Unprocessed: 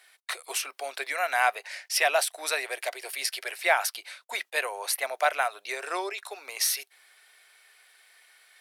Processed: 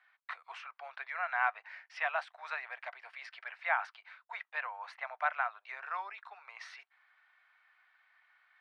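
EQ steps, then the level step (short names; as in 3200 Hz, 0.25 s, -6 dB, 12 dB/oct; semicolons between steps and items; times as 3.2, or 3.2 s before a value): HPF 960 Hz 24 dB/oct; LPF 1300 Hz 12 dB/oct; air absorption 76 m; 0.0 dB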